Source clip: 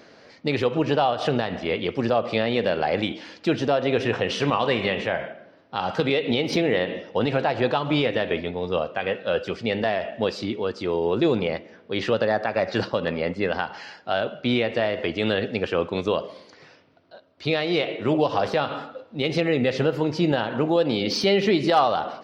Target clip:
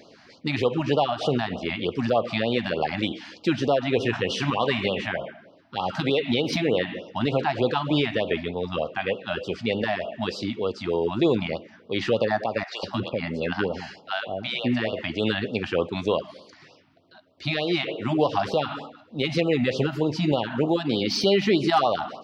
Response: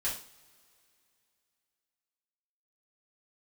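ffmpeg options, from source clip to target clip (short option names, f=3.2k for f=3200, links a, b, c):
-filter_complex "[0:a]asettb=1/sr,asplit=3[a][b][c];[a]atrim=end=12.634[d];[b]atrim=start=12.63:end=14.93,asetpts=PTS-STARTPTS,afade=t=in:d=0.004:c=qsin,afade=t=out:st=2.296:d=0.004:c=qsin,acrossover=split=660[e][f];[e]adelay=200[g];[g][f]amix=inputs=2:normalize=0,atrim=end_sample=101430[h];[c]atrim=start=14.926[i];[d][h]acrossfade=d=0.004:c1=hsin:c2=qsin[j];[j][i]acrossfade=d=0.004:c1=qsin:c2=hsin,afftfilt=real='re*(1-between(b*sr/1024,400*pow(2000/400,0.5+0.5*sin(2*PI*3.3*pts/sr))/1.41,400*pow(2000/400,0.5+0.5*sin(2*PI*3.3*pts/sr))*1.41))':imag='im*(1-between(b*sr/1024,400*pow(2000/400,0.5+0.5*sin(2*PI*3.3*pts/sr))/1.41,400*pow(2000/400,0.5+0.5*sin(2*PI*3.3*pts/sr))*1.41))':win_size=1024:overlap=0.75"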